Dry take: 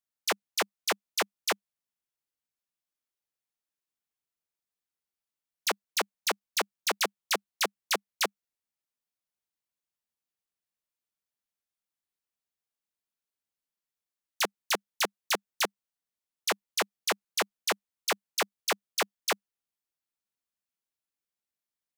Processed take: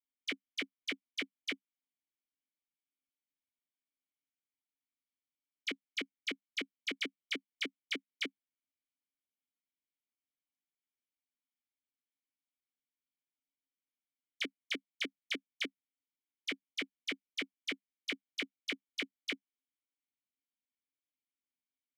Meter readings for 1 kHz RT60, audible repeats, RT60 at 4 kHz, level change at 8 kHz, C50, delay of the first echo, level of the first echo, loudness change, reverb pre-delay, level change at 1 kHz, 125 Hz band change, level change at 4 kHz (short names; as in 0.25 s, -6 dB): none, none, none, -20.0 dB, none, none, none, -8.5 dB, none, -25.0 dB, under -10 dB, -7.0 dB